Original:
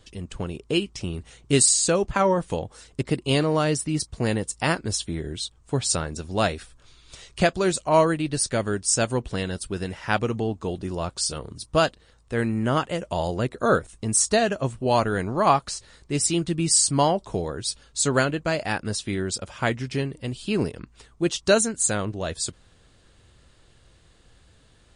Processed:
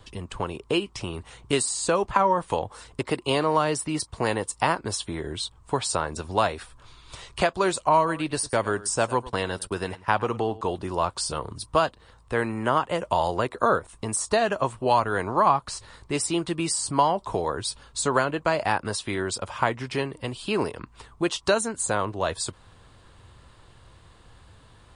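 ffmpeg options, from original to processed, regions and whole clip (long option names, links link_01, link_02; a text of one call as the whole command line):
ffmpeg -i in.wav -filter_complex "[0:a]asettb=1/sr,asplit=3[link_01][link_02][link_03];[link_01]atrim=end=7.974[link_04];[link_02]atrim=start=7.97:end=10.61,asetpts=PTS-STARTPTS,afade=type=in:duration=0.004:curve=qsin,afade=type=out:start_time=2.636:duration=0.004:curve=qsin,agate=range=-23dB:threshold=-37dB:ratio=16:release=100:detection=peak,aecho=1:1:104:0.106,atrim=end_sample=116424[link_05];[link_03]atrim=start=10.606[link_06];[link_04][link_05]acrossfade=duration=0.004:curve1=hsin:curve2=qsin[link_07];[link_07][link_06]acrossfade=duration=0.004:curve1=qsin:curve2=hsin,equalizer=frequency=100:width_type=o:width=0.67:gain=5,equalizer=frequency=1000:width_type=o:width=0.67:gain=10,equalizer=frequency=6300:width_type=o:width=0.67:gain=-5,acrossover=split=320|1100[link_08][link_09][link_10];[link_08]acompressor=threshold=-38dB:ratio=4[link_11];[link_09]acompressor=threshold=-24dB:ratio=4[link_12];[link_10]acompressor=threshold=-29dB:ratio=4[link_13];[link_11][link_12][link_13]amix=inputs=3:normalize=0,volume=2.5dB" out.wav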